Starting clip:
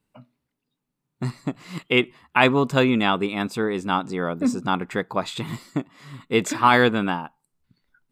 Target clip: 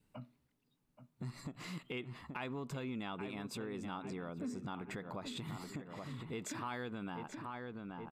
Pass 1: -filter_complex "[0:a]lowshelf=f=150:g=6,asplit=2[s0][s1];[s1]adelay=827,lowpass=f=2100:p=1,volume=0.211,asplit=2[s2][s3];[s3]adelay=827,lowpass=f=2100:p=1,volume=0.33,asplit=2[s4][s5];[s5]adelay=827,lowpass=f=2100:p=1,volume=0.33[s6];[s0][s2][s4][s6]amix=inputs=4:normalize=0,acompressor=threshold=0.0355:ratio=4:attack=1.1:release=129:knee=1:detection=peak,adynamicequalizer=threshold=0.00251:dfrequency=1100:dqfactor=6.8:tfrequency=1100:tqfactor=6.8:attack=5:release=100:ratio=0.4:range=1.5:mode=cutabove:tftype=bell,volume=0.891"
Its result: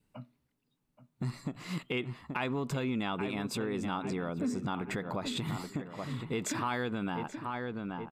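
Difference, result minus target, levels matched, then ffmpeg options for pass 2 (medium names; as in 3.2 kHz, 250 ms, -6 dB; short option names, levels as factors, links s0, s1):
compression: peak gain reduction -8.5 dB
-filter_complex "[0:a]lowshelf=f=150:g=6,asplit=2[s0][s1];[s1]adelay=827,lowpass=f=2100:p=1,volume=0.211,asplit=2[s2][s3];[s3]adelay=827,lowpass=f=2100:p=1,volume=0.33,asplit=2[s4][s5];[s5]adelay=827,lowpass=f=2100:p=1,volume=0.33[s6];[s0][s2][s4][s6]amix=inputs=4:normalize=0,acompressor=threshold=0.00944:ratio=4:attack=1.1:release=129:knee=1:detection=peak,adynamicequalizer=threshold=0.00251:dfrequency=1100:dqfactor=6.8:tfrequency=1100:tqfactor=6.8:attack=5:release=100:ratio=0.4:range=1.5:mode=cutabove:tftype=bell,volume=0.891"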